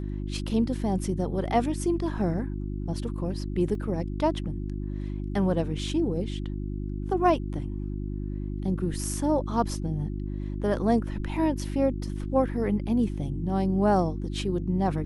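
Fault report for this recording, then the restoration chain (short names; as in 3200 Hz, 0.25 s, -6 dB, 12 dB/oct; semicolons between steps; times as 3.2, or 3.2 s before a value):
hum 50 Hz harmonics 7 -32 dBFS
3.75 gap 2.6 ms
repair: de-hum 50 Hz, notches 7; interpolate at 3.75, 2.6 ms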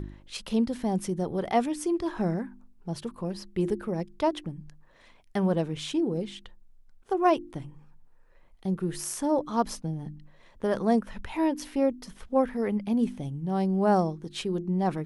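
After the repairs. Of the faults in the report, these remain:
none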